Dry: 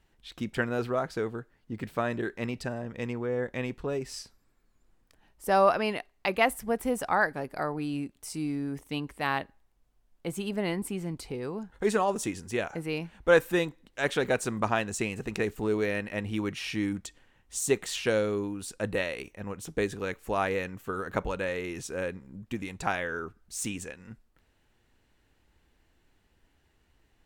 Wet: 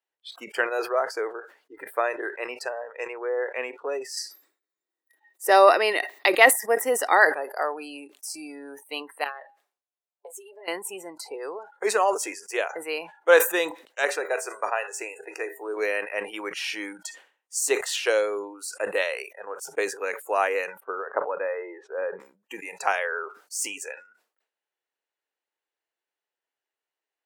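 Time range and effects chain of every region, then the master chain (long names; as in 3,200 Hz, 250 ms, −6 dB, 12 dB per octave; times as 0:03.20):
0:04.17–0:07.25: high-shelf EQ 2,900 Hz +5 dB + hollow resonant body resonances 320/1,900/3,700 Hz, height 12 dB, ringing for 30 ms
0:09.24–0:10.68: notch comb filter 160 Hz + downward compressor 20 to 1, threshold −39 dBFS
0:14.05–0:15.77: parametric band 3,300 Hz −11 dB 0.21 octaves + notch filter 2,200 Hz, Q 24 + tuned comb filter 81 Hz, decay 0.68 s, mix 50%
0:20.80–0:22.20: low-pass filter 1,400 Hz + low-shelf EQ 93 Hz −10 dB
whole clip: high-pass filter 440 Hz 24 dB per octave; noise reduction from a noise print of the clip's start 23 dB; level that may fall only so fast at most 140 dB per second; level +5.5 dB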